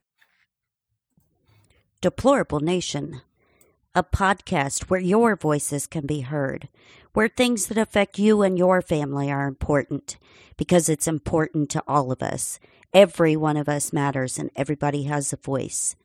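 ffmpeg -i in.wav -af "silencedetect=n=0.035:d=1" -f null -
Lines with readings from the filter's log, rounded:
silence_start: 0.00
silence_end: 2.03 | silence_duration: 2.03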